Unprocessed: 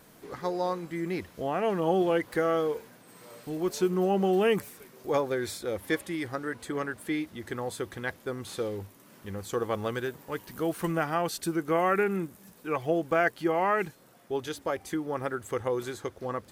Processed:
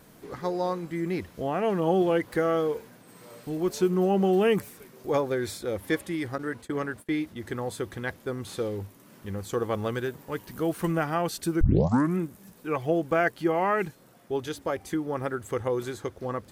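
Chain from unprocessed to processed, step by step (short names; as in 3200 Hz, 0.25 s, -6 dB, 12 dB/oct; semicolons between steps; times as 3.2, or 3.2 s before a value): 11.61 tape start 0.57 s; low shelf 320 Hz +5 dB; 6.38–7.43 gate -40 dBFS, range -24 dB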